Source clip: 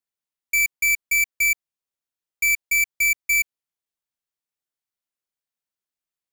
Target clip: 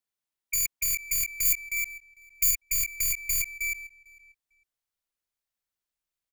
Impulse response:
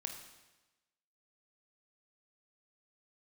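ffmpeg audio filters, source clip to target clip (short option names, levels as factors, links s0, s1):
-filter_complex "[0:a]asettb=1/sr,asplit=3[s0][s1][s2];[s0]atrim=end=1.454[s3];[s1]atrim=start=1.45:end=2.51,asetpts=PTS-STARTPTS,afade=t=in:d=0.004:c=qsin,afade=t=out:st=1.056:d=0.004:c=qsin,highshelf=f=11000:g=8.5[s4];[s2]atrim=start=2.506[s5];[s3][s4]acrossfade=d=0.004:c1=hsin:c2=qsin[s6];[s6][s5]acrossfade=d=0.004:c1=qsin:c2=hsin,asplit=2[s7][s8];[s8]adelay=450,lowpass=f=3800:p=1,volume=0.0794,asplit=2[s9][s10];[s10]adelay=450,lowpass=f=3800:p=1,volume=0.22[s11];[s9][s11]amix=inputs=2:normalize=0[s12];[s7][s12]amix=inputs=2:normalize=0,asubboost=boost=3:cutoff=89,asplit=2[s13][s14];[s14]aecho=0:1:313:0.282[s15];[s13][s15]amix=inputs=2:normalize=0,afftfilt=real='re*lt(hypot(re,im),0.631)':imag='im*lt(hypot(re,im),0.631)':win_size=1024:overlap=0.75"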